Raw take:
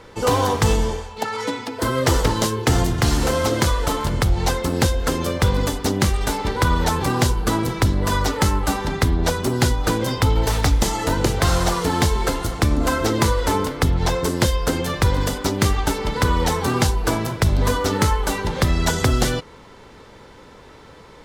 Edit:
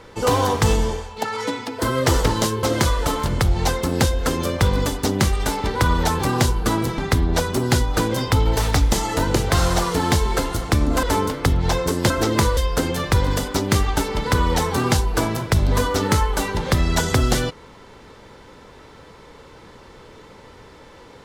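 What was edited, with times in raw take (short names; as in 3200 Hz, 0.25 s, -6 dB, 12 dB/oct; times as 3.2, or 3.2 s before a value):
2.63–3.44 cut
7.79–8.88 cut
12.93–13.4 move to 14.47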